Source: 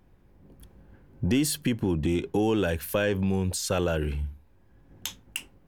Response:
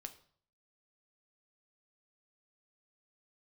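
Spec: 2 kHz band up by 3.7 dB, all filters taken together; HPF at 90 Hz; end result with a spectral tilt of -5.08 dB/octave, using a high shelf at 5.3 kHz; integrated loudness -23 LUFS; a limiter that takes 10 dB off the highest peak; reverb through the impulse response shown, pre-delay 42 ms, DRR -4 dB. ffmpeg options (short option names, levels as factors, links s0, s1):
-filter_complex "[0:a]highpass=90,equalizer=f=2000:t=o:g=6.5,highshelf=f=5300:g=-7.5,alimiter=limit=0.0841:level=0:latency=1,asplit=2[s0][s1];[1:a]atrim=start_sample=2205,adelay=42[s2];[s1][s2]afir=irnorm=-1:irlink=0,volume=2.66[s3];[s0][s3]amix=inputs=2:normalize=0,volume=1.58"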